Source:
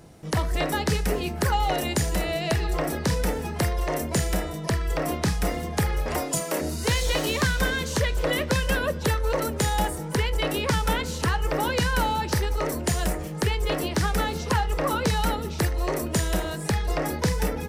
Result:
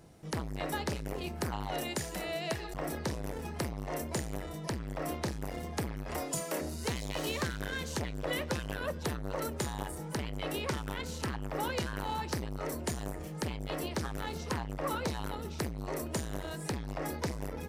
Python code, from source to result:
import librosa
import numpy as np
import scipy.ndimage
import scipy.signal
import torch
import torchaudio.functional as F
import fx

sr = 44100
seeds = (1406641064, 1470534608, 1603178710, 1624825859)

y = fx.highpass(x, sr, hz=200.0, slope=6, at=(1.83, 2.74))
y = fx.transformer_sat(y, sr, knee_hz=520.0)
y = y * 10.0 ** (-7.5 / 20.0)